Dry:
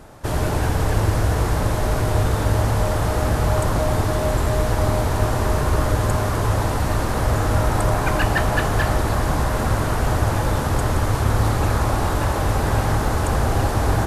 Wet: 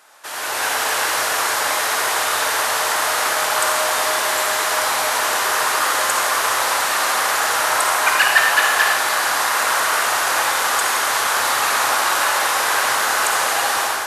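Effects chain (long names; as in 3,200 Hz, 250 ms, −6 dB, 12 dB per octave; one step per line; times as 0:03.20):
high-pass filter 1,300 Hz 12 dB per octave
automatic gain control gain up to 9 dB
convolution reverb, pre-delay 43 ms, DRR 2 dB
level +2 dB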